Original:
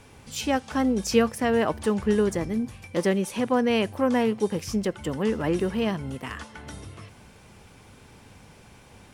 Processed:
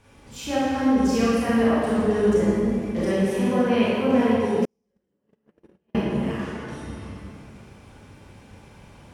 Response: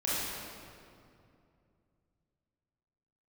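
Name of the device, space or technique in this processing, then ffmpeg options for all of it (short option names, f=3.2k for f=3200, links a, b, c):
swimming-pool hall: -filter_complex "[1:a]atrim=start_sample=2205[a];[0:a][a]afir=irnorm=-1:irlink=0,highshelf=f=4.4k:g=-4,asettb=1/sr,asplit=3[b][c][d];[b]atrim=end=4.654[e];[c]atrim=start=4.65:end=5.95,asetpts=PTS-STARTPTS,afade=t=in:d=0.004:c=qsin,afade=t=out:st=1.296:d=0.004:c=qsin,agate=range=-51dB:threshold=-9dB:ratio=16:detection=peak[f];[d]atrim=start=5.946[g];[e][f]acrossfade=d=0.004:c1=hsin:c2=qsin[h];[h][g]acrossfade=d=0.004:c1=qsin:c2=hsin,volume=-6.5dB"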